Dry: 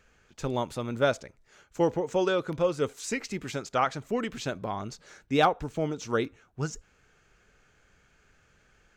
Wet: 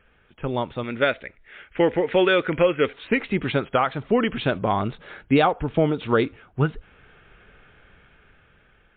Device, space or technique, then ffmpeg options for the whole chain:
low-bitrate web radio: -filter_complex "[0:a]asettb=1/sr,asplit=3[a][b][c];[a]atrim=end=0.834[d];[b]atrim=start=0.83:end=2.93,asetpts=PTS-STARTPTS,afade=t=in:d=0.004:c=qsin,afade=t=out:st=2.096:d=0.004:c=qsin,equalizer=f=125:t=o:w=1:g=-7,equalizer=f=1k:t=o:w=1:g=-6,equalizer=f=2k:t=o:w=1:g=12[e];[c]atrim=start=2.926[f];[d][e]acrossfade=d=0.004:c1=hsin:c2=qsin[g];[g][f]acrossfade=d=0.004:c1=qsin:c2=hsin,dynaudnorm=f=440:g=7:m=9dB,alimiter=limit=-12.5dB:level=0:latency=1:release=336,volume=4dB" -ar 8000 -c:a libmp3lame -b:a 40k

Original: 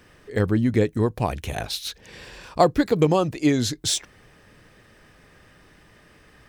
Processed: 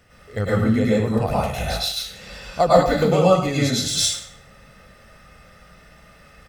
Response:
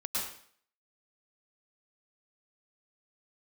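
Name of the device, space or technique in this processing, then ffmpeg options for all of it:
microphone above a desk: -filter_complex "[0:a]aecho=1:1:1.5:0.54[a];[1:a]atrim=start_sample=2205[b];[a][b]afir=irnorm=-1:irlink=0,volume=-1dB"

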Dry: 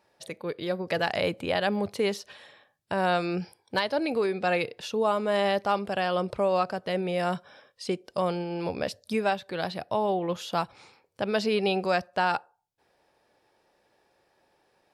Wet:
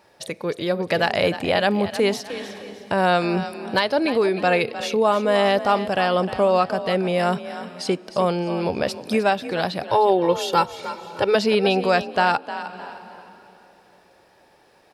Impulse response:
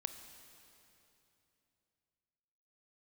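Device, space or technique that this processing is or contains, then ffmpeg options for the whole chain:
ducked reverb: -filter_complex "[0:a]asettb=1/sr,asplit=3[a][b][c];[a]atrim=end=9.884[d];[b]atrim=start=9.88:end=11.35,asetpts=PTS-STARTPTS,afade=t=in:d=0.004:c=qsin,afade=t=out:st=1.466:d=0.004:c=qsin,aecho=1:1:2.2:0.95,atrim=end_sample=64827[e];[c]atrim=start=11.346[f];[d][e]acrossfade=d=0.004:c1=hsin:c2=qsin[g];[g][f]acrossfade=d=0.004:c1=qsin:c2=hsin,asplit=3[h][i][j];[1:a]atrim=start_sample=2205[k];[i][k]afir=irnorm=-1:irlink=0[l];[j]apad=whole_len=658819[m];[l][m]sidechaincompress=threshold=-45dB:ratio=8:attack=12:release=240,volume=0.5dB[n];[h][n]amix=inputs=2:normalize=0,asplit=4[o][p][q][r];[p]adelay=307,afreqshift=39,volume=-12.5dB[s];[q]adelay=614,afreqshift=78,volume=-22.4dB[t];[r]adelay=921,afreqshift=117,volume=-32.3dB[u];[o][s][t][u]amix=inputs=4:normalize=0,volume=6dB"

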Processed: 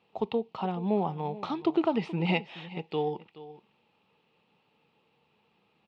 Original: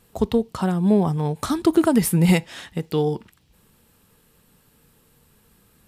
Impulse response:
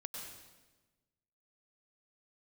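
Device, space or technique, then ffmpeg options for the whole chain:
kitchen radio: -filter_complex "[0:a]asettb=1/sr,asplit=3[a][b][c];[a]atrim=end=0.764[d];[b]atrim=start=0.76:end=2.51,asetpts=PTS-STARTPTS,afade=t=in:d=0.004:c=qsin,afade=t=out:st=1.746:d=0.004:c=qsin,lowpass=7.6k[e];[c]atrim=start=2.506[f];[d][e]acrossfade=d=0.004:c1=hsin:c2=qsin[g];[g][f]acrossfade=d=0.004:c1=qsin:c2=hsin,highpass=210,equalizer=f=260:t=q:w=4:g=-5,equalizer=f=820:t=q:w=4:g=8,equalizer=f=1.6k:t=q:w=4:g=-10,equalizer=f=2.6k:t=q:w=4:g=8,lowpass=f=3.8k:w=0.5412,lowpass=f=3.8k:w=1.3066,aecho=1:1:426:0.15,volume=-7.5dB"

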